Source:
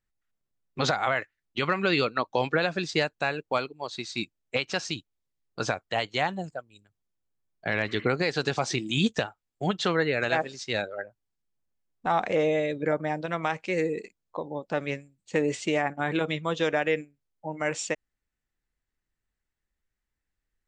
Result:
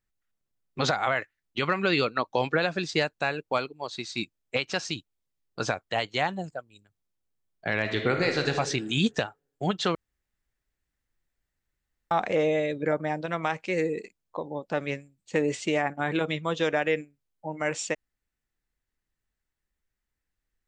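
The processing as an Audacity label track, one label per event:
7.800000	8.520000	thrown reverb, RT60 1.1 s, DRR 4 dB
9.950000	12.110000	fill with room tone

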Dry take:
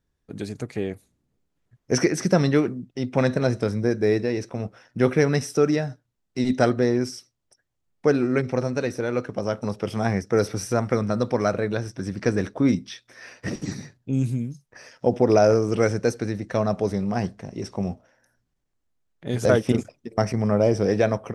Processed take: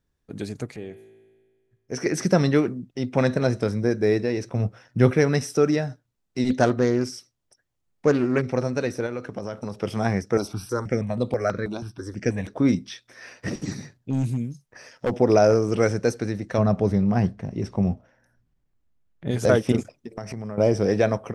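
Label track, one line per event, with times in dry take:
0.760000	2.060000	tuned comb filter 55 Hz, decay 1.7 s, mix 70%
4.460000	5.110000	parametric band 110 Hz +8.5 dB 1.3 octaves
6.500000	8.460000	highs frequency-modulated by the lows depth 0.23 ms
9.060000	9.750000	downward compressor 4 to 1, threshold −27 dBFS
10.370000	12.480000	step-sequenced phaser 6.2 Hz 480–5,600 Hz
13.540000	15.180000	gain into a clipping stage and back gain 18.5 dB
16.580000	19.310000	bass and treble bass +7 dB, treble −7 dB
19.940000	20.580000	downward compressor 8 to 1, threshold −29 dBFS

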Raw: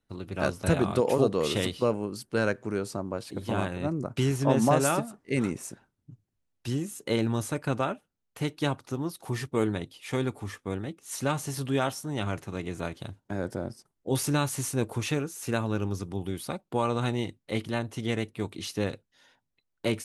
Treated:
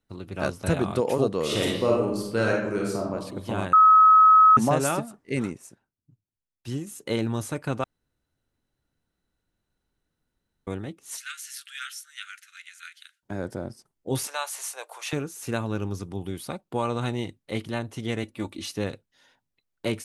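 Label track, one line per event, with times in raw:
1.430000	3.130000	thrown reverb, RT60 0.82 s, DRR −2 dB
3.730000	4.570000	beep over 1,280 Hz −11 dBFS
5.380000	6.870000	expander for the loud parts, over −49 dBFS
7.840000	10.670000	fill with room tone
11.170000	13.230000	Butterworth high-pass 1,400 Hz 72 dB per octave
14.270000	15.130000	Butterworth high-pass 590 Hz
18.230000	18.720000	comb filter 3.5 ms

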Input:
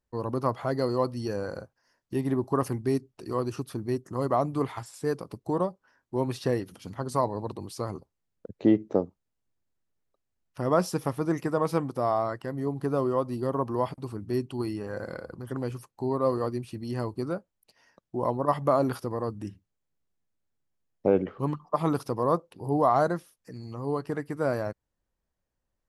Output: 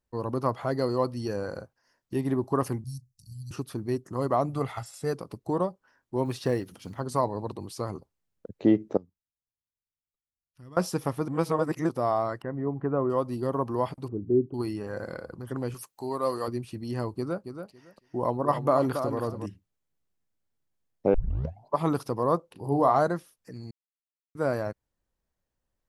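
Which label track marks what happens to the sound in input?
2.840000	3.510000	inverse Chebyshev band-stop filter 440–1,600 Hz, stop band 70 dB
4.490000	5.130000	comb filter 1.5 ms, depth 50%
6.250000	7.000000	log-companded quantiser 8 bits
8.970000	10.770000	guitar amp tone stack bass-middle-treble 6-0-2
11.280000	11.890000	reverse
12.420000	13.100000	low-pass filter 2,000 Hz 24 dB per octave
14.080000	14.540000	low-pass with resonance 400 Hz, resonance Q 2.1
15.740000	16.480000	spectral tilt +3 dB per octave
17.160000	19.460000	repeating echo 278 ms, feedback 17%, level −8 dB
21.140000	21.140000	tape start 0.63 s
22.470000	22.990000	double-tracking delay 36 ms −9.5 dB
23.710000	24.350000	silence

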